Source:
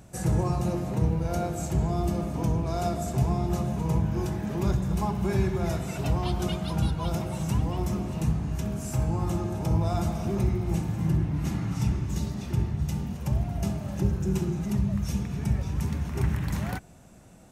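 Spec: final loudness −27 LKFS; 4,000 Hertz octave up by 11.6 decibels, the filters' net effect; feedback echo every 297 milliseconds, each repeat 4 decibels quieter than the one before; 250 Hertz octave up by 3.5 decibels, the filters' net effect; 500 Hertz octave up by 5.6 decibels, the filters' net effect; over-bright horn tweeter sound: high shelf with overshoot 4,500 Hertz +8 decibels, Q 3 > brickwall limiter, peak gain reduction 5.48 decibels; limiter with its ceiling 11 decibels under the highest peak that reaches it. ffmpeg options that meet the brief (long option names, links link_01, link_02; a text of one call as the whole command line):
ffmpeg -i in.wav -af "equalizer=frequency=250:width_type=o:gain=4,equalizer=frequency=500:width_type=o:gain=6.5,equalizer=frequency=4000:width_type=o:gain=9,alimiter=limit=-21.5dB:level=0:latency=1,highshelf=frequency=4500:width_type=q:width=3:gain=8,aecho=1:1:297|594|891|1188|1485|1782|2079|2376|2673:0.631|0.398|0.25|0.158|0.0994|0.0626|0.0394|0.0249|0.0157,volume=1.5dB,alimiter=limit=-17.5dB:level=0:latency=1" out.wav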